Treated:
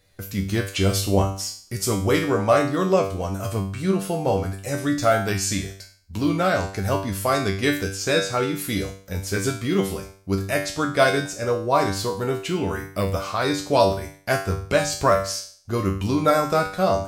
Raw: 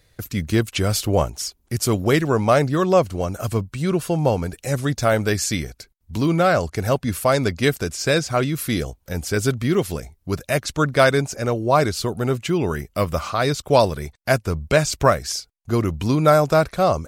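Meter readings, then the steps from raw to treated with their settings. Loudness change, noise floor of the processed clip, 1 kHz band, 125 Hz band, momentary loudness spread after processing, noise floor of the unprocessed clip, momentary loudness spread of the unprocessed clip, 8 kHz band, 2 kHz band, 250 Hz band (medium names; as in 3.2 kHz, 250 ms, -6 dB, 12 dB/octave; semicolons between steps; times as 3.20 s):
-2.0 dB, -50 dBFS, -1.5 dB, -4.0 dB, 9 LU, -63 dBFS, 9 LU, -1.0 dB, -1.5 dB, -2.0 dB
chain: hum notches 50/100/150 Hz; feedback comb 97 Hz, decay 0.48 s, harmonics all, mix 90%; trim +9 dB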